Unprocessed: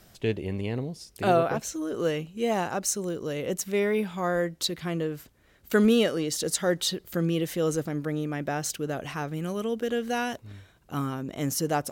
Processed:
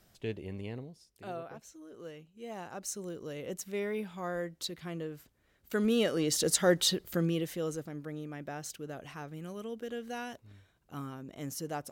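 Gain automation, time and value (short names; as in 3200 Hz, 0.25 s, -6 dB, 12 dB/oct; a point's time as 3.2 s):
0.7 s -9.5 dB
1.13 s -19 dB
2.33 s -19 dB
2.99 s -9.5 dB
5.8 s -9.5 dB
6.3 s 0 dB
6.95 s 0 dB
7.83 s -11 dB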